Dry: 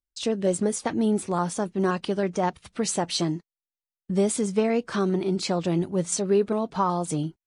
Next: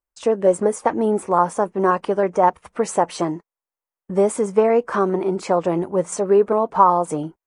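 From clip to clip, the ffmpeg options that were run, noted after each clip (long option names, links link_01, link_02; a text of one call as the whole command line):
ffmpeg -i in.wav -af "equalizer=frequency=125:width_type=o:width=1:gain=-5,equalizer=frequency=500:width_type=o:width=1:gain=8,equalizer=frequency=1000:width_type=o:width=1:gain=11,equalizer=frequency=2000:width_type=o:width=1:gain=3,equalizer=frequency=4000:width_type=o:width=1:gain=-11" out.wav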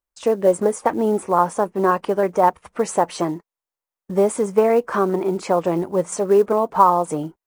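ffmpeg -i in.wav -af "acrusher=bits=8:mode=log:mix=0:aa=0.000001" out.wav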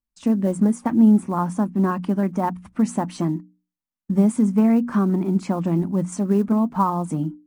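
ffmpeg -i in.wav -af "lowshelf=frequency=330:width_type=q:width=3:gain=10.5,bandreject=frequency=60:width_type=h:width=6,bandreject=frequency=120:width_type=h:width=6,bandreject=frequency=180:width_type=h:width=6,bandreject=frequency=240:width_type=h:width=6,bandreject=frequency=300:width_type=h:width=6,volume=-6.5dB" out.wav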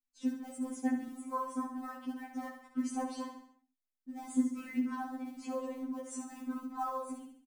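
ffmpeg -i in.wav -filter_complex "[0:a]asplit=2[link_01][link_02];[link_02]aecho=0:1:68|136|204|272|340:0.422|0.198|0.0932|0.0438|0.0206[link_03];[link_01][link_03]amix=inputs=2:normalize=0,afftfilt=real='re*3.46*eq(mod(b,12),0)':imag='im*3.46*eq(mod(b,12),0)':win_size=2048:overlap=0.75,volume=-9dB" out.wav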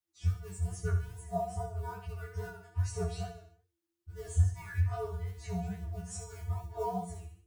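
ffmpeg -i in.wav -af "afreqshift=-340,flanger=delay=17.5:depth=7:speed=2.4,volume=5.5dB" out.wav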